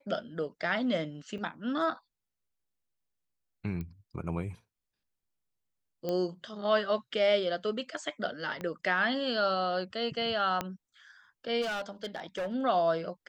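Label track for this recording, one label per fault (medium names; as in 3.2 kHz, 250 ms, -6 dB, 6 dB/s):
1.380000	1.380000	dropout 4.5 ms
3.810000	3.810000	pop -27 dBFS
6.090000	6.090000	pop -20 dBFS
8.610000	8.610000	pop -24 dBFS
10.610000	10.610000	pop -16 dBFS
11.610000	12.530000	clipped -30.5 dBFS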